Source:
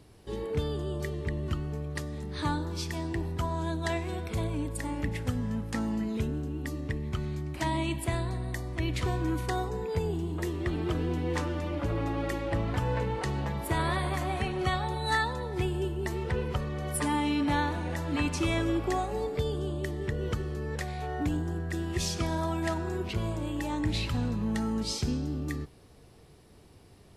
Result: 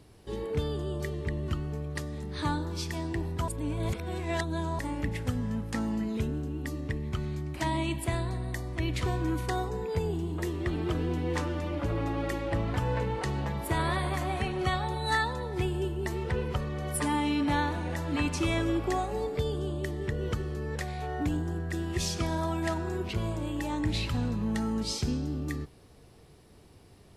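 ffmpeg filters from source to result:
-filter_complex "[0:a]asplit=3[s0][s1][s2];[s0]atrim=end=3.482[s3];[s1]atrim=start=3.478:end=4.792,asetpts=PTS-STARTPTS,areverse[s4];[s2]atrim=start=4.788[s5];[s3][s4]acrossfade=d=0.004:c1=hsin:c2=hsin[s6];[s6][s5]acrossfade=d=0.004:c1=hsin:c2=hsin"

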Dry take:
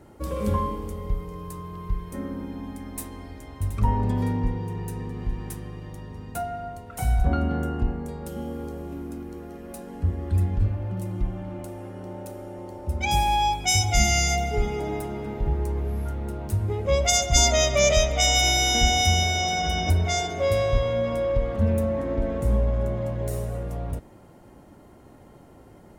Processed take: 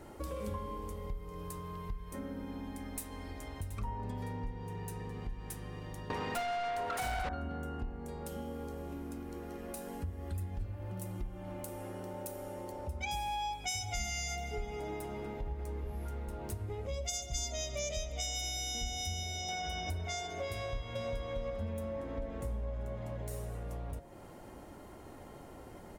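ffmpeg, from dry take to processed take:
-filter_complex "[0:a]asettb=1/sr,asplit=3[s0][s1][s2];[s0]atrim=end=6.104[s3];[s1]atrim=start=6.1:end=7.29,asetpts=PTS-STARTPTS,afade=t=in:d=0.004:c=qsin,afade=t=out:st=1.186:d=0.004:c=qsin,asplit=2[s4][s5];[s5]highpass=f=720:p=1,volume=63.1,asoftclip=type=tanh:threshold=0.299[s6];[s4][s6]amix=inputs=2:normalize=0,lowpass=f=2500:p=1,volume=0.501[s7];[s2]atrim=start=7.286[s8];[s3][s7]acrossfade=d=0.004:c1=hsin:c2=qsin[s9];[s9][s8]acrossfade=d=0.004:c1=qsin:c2=hsin,asettb=1/sr,asplit=3[s10][s11][s12];[s10]atrim=end=9.774[s13];[s11]atrim=start=9.77:end=12.72,asetpts=PTS-STARTPTS,afade=t=in:d=0.004:c=qsin,afade=t=out:st=2.946:d=0.004:c=qsin,highshelf=f=8500:g=11[s14];[s12]atrim=start=12.716[s15];[s13][s14]acrossfade=d=0.004:c1=hsin:c2=qsin[s16];[s16][s15]acrossfade=d=0.004:c1=qsin:c2=hsin,asplit=2[s17][s18];[s18]afade=t=in:st=15.15:d=0.01,afade=t=out:st=15.82:d=0.01,aecho=0:1:430|860|1290|1720|2150|2580|3010|3440:0.421697|0.253018|0.151811|0.0910864|0.0546519|0.0327911|0.0196747|0.0118048[s19];[s17][s19]amix=inputs=2:normalize=0,asettb=1/sr,asplit=3[s20][s21][s22];[s20]atrim=end=16.874[s23];[s21]atrim=start=16.87:end=19.49,asetpts=PTS-STARTPTS,afade=t=in:d=0.004:c=qsin,afade=t=out:st=2.616:d=0.004:c=qsin,equalizer=f=1300:t=o:w=2.1:g=-11[s24];[s22]atrim=start=19.486[s25];[s23][s24]acrossfade=d=0.004:c1=hsin:c2=qsin[s26];[s26][s25]acrossfade=d=0.004:c1=qsin:c2=hsin,asplit=2[s27][s28];[s28]afade=t=in:st=20.55:d=0.01,afade=t=out:st=21.1:d=0.01,aecho=0:1:400|800|1200|1600:0.891251|0.267375|0.0802126|0.0240638[s29];[s27][s29]amix=inputs=2:normalize=0,equalizer=f=150:w=0.55:g=-5.5,bandreject=f=49.97:t=h:w=4,bandreject=f=99.94:t=h:w=4,bandreject=f=149.91:t=h:w=4,bandreject=f=199.88:t=h:w=4,bandreject=f=249.85:t=h:w=4,bandreject=f=299.82:t=h:w=4,bandreject=f=349.79:t=h:w=4,bandreject=f=399.76:t=h:w=4,bandreject=f=449.73:t=h:w=4,bandreject=f=499.7:t=h:w=4,bandreject=f=549.67:t=h:w=4,bandreject=f=599.64:t=h:w=4,bandreject=f=649.61:t=h:w=4,bandreject=f=699.58:t=h:w=4,bandreject=f=749.55:t=h:w=4,bandreject=f=799.52:t=h:w=4,bandreject=f=849.49:t=h:w=4,bandreject=f=899.46:t=h:w=4,bandreject=f=949.43:t=h:w=4,bandreject=f=999.4:t=h:w=4,bandreject=f=1049.37:t=h:w=4,bandreject=f=1099.34:t=h:w=4,bandreject=f=1149.31:t=h:w=4,bandreject=f=1199.28:t=h:w=4,bandreject=f=1249.25:t=h:w=4,bandreject=f=1299.22:t=h:w=4,bandreject=f=1349.19:t=h:w=4,bandreject=f=1399.16:t=h:w=4,bandreject=f=1449.13:t=h:w=4,bandreject=f=1499.1:t=h:w=4,bandreject=f=1549.07:t=h:w=4,bandreject=f=1599.04:t=h:w=4,bandreject=f=1649.01:t=h:w=4,bandreject=f=1698.98:t=h:w=4,bandreject=f=1748.95:t=h:w=4,bandreject=f=1798.92:t=h:w=4,bandreject=f=1848.89:t=h:w=4,acompressor=threshold=0.00708:ratio=3,volume=1.33"

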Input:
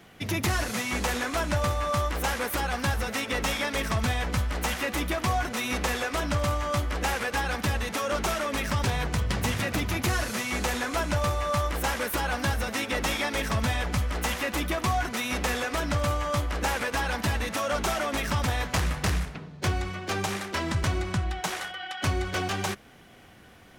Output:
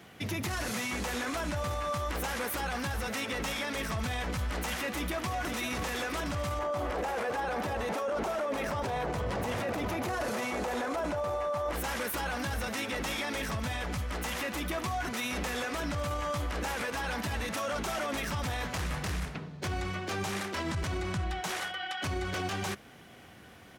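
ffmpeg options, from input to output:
-filter_complex "[0:a]asplit=2[s0][s1];[s1]afade=t=in:st=4.77:d=0.01,afade=t=out:st=5.33:d=0.01,aecho=0:1:510|1020|1530|2040|2550|3060|3570|4080|4590:0.354813|0.230629|0.149909|0.0974406|0.0633364|0.0411687|0.0267596|0.0173938|0.0113059[s2];[s0][s2]amix=inputs=2:normalize=0,asettb=1/sr,asplit=3[s3][s4][s5];[s3]atrim=end=6.594[s6];[s4]atrim=start=6.59:end=11.73,asetpts=PTS-STARTPTS,afade=t=in:d=0.004:c=qsin,afade=t=out:st=5.136:d=0.004:c=qsin,equalizer=f=610:w=0.58:g=14.5[s7];[s5]atrim=start=11.726[s8];[s6][s7]acrossfade=d=0.004:c1=hsin:c2=qsin[s9];[s9][s8]acrossfade=d=0.004:c1=qsin:c2=hsin,asettb=1/sr,asplit=3[s10][s11][s12];[s10]atrim=end=13.484[s13];[s11]atrim=start=13.48:end=14.67,asetpts=PTS-STARTPTS,afade=t=in:d=0.004:c=qsin,afade=t=out:st=1.186:d=0.004:c=qsin,acompressor=threshold=0.0398:ratio=6:attack=3.2:release=140:knee=1:detection=peak[s14];[s12]atrim=start=14.666[s15];[s13][s14]acrossfade=d=0.004:c1=hsin:c2=qsin[s16];[s16][s15]acrossfade=d=0.004:c1=qsin:c2=hsin,highpass=62,alimiter=level_in=1.19:limit=0.0631:level=0:latency=1:release=14,volume=0.841"

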